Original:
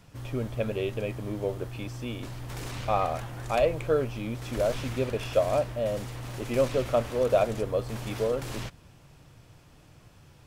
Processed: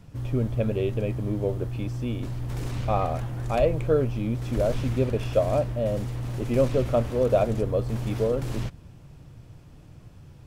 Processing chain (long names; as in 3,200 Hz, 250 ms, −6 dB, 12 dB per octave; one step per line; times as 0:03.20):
low-shelf EQ 450 Hz +11.5 dB
level −3 dB